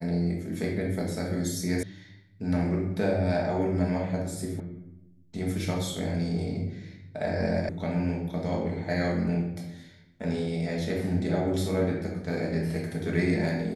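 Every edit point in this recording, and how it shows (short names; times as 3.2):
1.83 sound cut off
4.6 sound cut off
7.69 sound cut off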